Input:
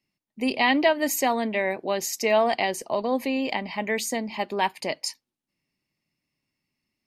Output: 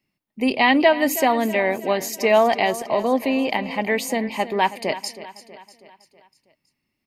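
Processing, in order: peaking EQ 6.4 kHz -6.5 dB 1.3 oct; on a send: feedback delay 322 ms, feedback 52%, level -15 dB; on the sum: trim +5 dB

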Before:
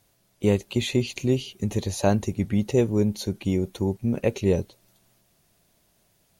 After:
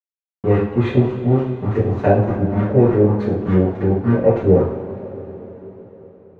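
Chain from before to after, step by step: small samples zeroed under -29.5 dBFS; LFO low-pass saw up 3.4 Hz 450–1800 Hz; two-slope reverb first 0.52 s, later 4.6 s, from -18 dB, DRR -9 dB; trim -2.5 dB

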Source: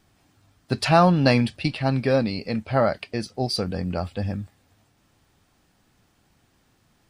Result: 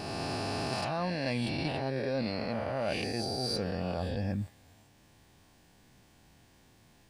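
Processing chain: reverse spectral sustain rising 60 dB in 1.89 s; reverse; compression 12:1, threshold -28 dBFS, peak gain reduction 19 dB; reverse; band-stop 1.3 kHz, Q 5.6; trim -1 dB

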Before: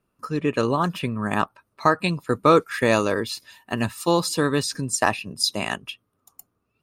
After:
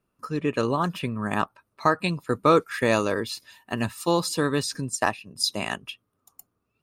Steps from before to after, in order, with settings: 4.89–5.36 s: upward expansion 1.5:1, over -31 dBFS; trim -2.5 dB

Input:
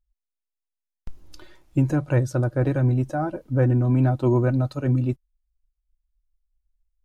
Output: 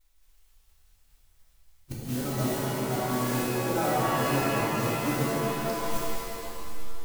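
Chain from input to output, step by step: reverse the whole clip; resonant high shelf 1.8 kHz -6 dB, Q 1.5; compression 8:1, threshold -34 dBFS, peak gain reduction 18.5 dB; modulation noise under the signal 14 dB; inverted gate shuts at -26 dBFS, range -27 dB; peaking EQ 100 Hz -7 dB 2.2 oct; pitch-shifted reverb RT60 2.5 s, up +7 st, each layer -2 dB, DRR -6.5 dB; trim +5 dB

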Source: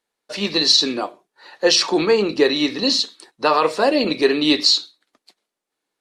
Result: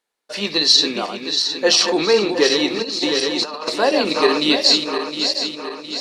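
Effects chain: backward echo that repeats 356 ms, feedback 70%, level -6.5 dB; bass shelf 310 Hz -5.5 dB; 2.82–3.70 s: compressor with a negative ratio -22 dBFS, ratio -0.5; trim +1 dB

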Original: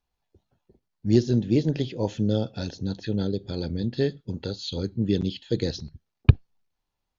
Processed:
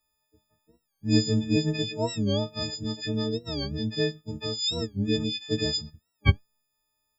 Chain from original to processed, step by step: partials quantised in pitch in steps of 6 st; warped record 45 rpm, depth 160 cents; trim -2.5 dB

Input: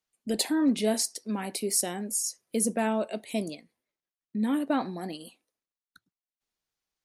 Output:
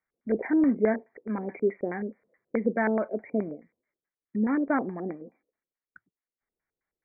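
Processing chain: LFO low-pass square 4.7 Hz 460–1900 Hz; brick-wall FIR low-pass 2.4 kHz

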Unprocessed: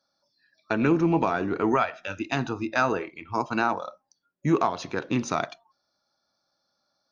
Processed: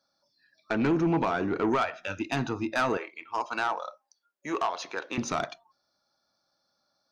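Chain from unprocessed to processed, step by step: 2.97–5.18 s: high-pass 560 Hz 12 dB/octave; saturation -19 dBFS, distortion -13 dB

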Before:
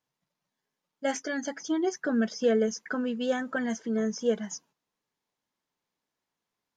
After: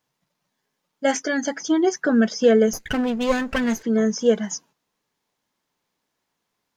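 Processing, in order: 2.73–3.83 s: comb filter that takes the minimum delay 0.45 ms; trim +8.5 dB

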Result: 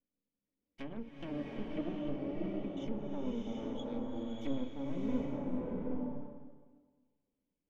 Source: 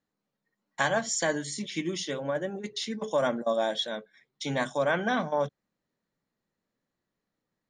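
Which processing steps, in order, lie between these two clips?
cascade formant filter i; half-wave rectifier; low-pass that closes with the level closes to 1 kHz, closed at -40.5 dBFS; swelling reverb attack 740 ms, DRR -3 dB; trim +4 dB

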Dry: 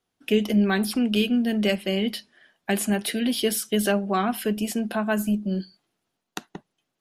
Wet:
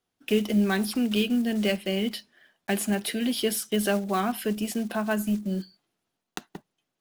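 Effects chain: block-companded coder 5-bit; trim -2.5 dB

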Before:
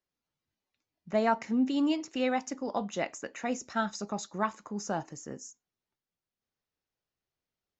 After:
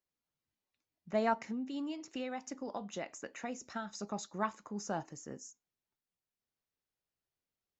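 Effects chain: 1.33–3.97 s: compression 6:1, threshold -32 dBFS, peak gain reduction 9.5 dB; trim -4.5 dB

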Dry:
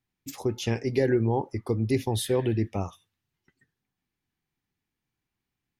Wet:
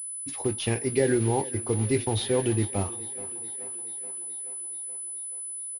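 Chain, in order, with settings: block-companded coder 5-bit; on a send: thinning echo 428 ms, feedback 70%, high-pass 200 Hz, level -17 dB; on the sum: dynamic bell 3.7 kHz, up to +4 dB, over -44 dBFS, Q 0.87; doubling 20 ms -11.5 dB; class-D stage that switches slowly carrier 10 kHz

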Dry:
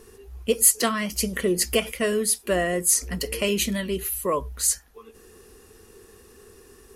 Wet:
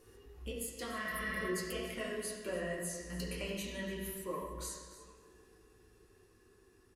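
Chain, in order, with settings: Doppler pass-by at 1.94 s, 7 m/s, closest 4.2 m; compression 6:1, threshold -39 dBFS, peak gain reduction 20 dB; spectral replace 1.01–1.43 s, 630–9000 Hz before; delay 291 ms -16.5 dB; reverberation RT60 1.6 s, pre-delay 4 ms, DRR -5.5 dB; trim -3.5 dB

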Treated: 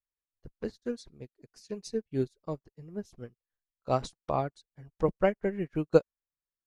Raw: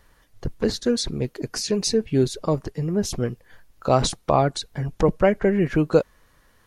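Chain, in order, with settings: upward expansion 2.5:1, over -40 dBFS; trim -3 dB

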